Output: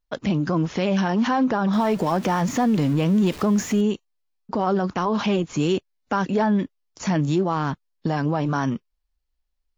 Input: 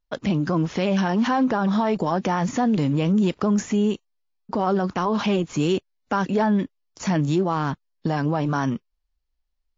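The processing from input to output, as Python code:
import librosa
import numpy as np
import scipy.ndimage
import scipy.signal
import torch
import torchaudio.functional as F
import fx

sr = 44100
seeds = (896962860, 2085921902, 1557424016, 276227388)

y = fx.zero_step(x, sr, step_db=-33.0, at=(1.73, 3.81))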